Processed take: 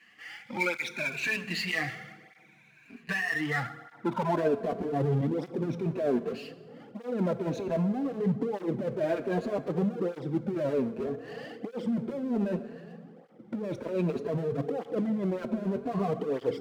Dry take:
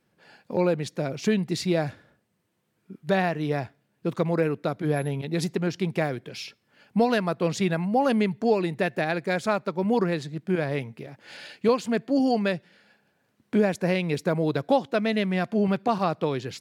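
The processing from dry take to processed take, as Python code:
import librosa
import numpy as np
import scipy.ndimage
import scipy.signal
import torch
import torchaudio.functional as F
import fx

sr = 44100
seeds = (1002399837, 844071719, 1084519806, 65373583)

y = fx.spec_ripple(x, sr, per_octave=1.5, drift_hz=0.62, depth_db=16)
y = fx.graphic_eq_10(y, sr, hz=(125, 250, 500, 8000), db=(8, 9, -6, -5))
y = fx.filter_sweep_bandpass(y, sr, from_hz=2200.0, to_hz=500.0, start_s=3.18, end_s=4.79, q=4.2)
y = fx.power_curve(y, sr, exponent=0.7)
y = fx.over_compress(y, sr, threshold_db=-30.0, ratio=-1.0)
y = fx.rev_fdn(y, sr, rt60_s=1.7, lf_ratio=1.45, hf_ratio=0.7, size_ms=13.0, drr_db=11.0)
y = fx.flanger_cancel(y, sr, hz=0.64, depth_ms=7.5)
y = y * librosa.db_to_amplitude(3.0)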